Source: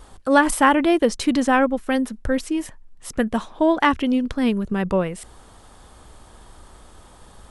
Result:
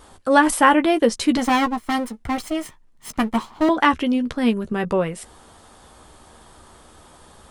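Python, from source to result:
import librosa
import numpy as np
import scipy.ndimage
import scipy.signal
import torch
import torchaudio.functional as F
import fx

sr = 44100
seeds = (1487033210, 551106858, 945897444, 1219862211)

y = fx.lower_of_two(x, sr, delay_ms=0.95, at=(1.37, 3.69))
y = fx.low_shelf(y, sr, hz=75.0, db=-10.5)
y = fx.doubler(y, sr, ms=13.0, db=-9.0)
y = y * 10.0 ** (1.0 / 20.0)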